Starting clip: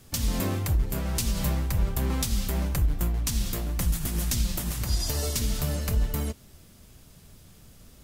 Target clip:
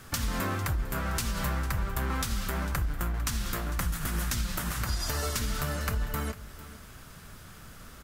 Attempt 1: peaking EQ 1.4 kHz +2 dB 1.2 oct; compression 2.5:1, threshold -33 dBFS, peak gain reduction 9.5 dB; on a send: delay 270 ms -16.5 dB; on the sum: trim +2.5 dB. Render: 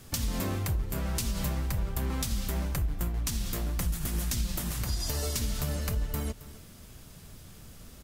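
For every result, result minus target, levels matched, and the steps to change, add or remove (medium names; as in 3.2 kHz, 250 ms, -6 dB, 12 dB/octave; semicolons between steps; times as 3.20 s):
echo 181 ms early; 1 kHz band -6.5 dB
change: delay 451 ms -16.5 dB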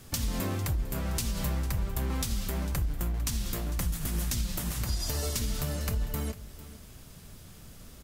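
1 kHz band -6.5 dB
change: peaking EQ 1.4 kHz +13.5 dB 1.2 oct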